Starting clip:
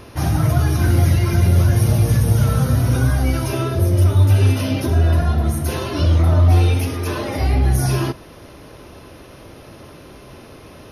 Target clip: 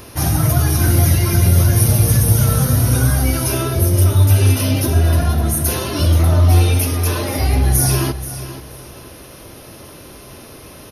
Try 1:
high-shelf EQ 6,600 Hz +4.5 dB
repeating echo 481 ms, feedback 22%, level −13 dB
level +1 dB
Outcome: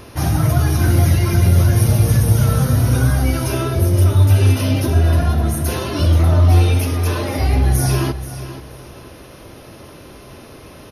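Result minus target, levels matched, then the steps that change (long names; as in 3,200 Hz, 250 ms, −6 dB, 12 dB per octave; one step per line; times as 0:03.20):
8,000 Hz band −7.0 dB
change: high-shelf EQ 6,600 Hz +15.5 dB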